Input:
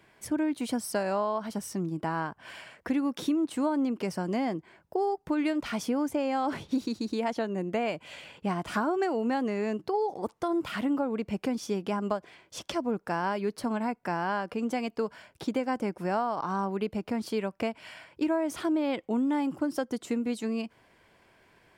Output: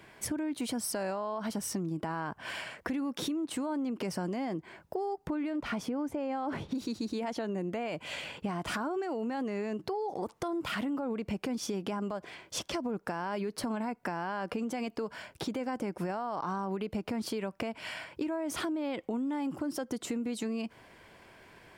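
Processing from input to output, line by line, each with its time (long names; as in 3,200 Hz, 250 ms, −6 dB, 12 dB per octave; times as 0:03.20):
0:05.27–0:06.75: high-shelf EQ 2,800 Hz −11 dB
whole clip: brickwall limiter −27 dBFS; downward compressor, threshold −37 dBFS; level +6 dB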